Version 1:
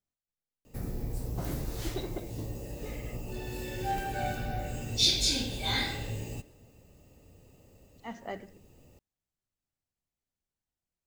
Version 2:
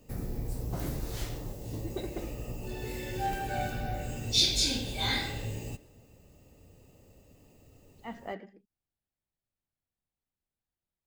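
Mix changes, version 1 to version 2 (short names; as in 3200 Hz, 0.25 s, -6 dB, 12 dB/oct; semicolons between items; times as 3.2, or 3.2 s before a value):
speech: add bell 6300 Hz -12.5 dB 0.59 oct; background: entry -0.65 s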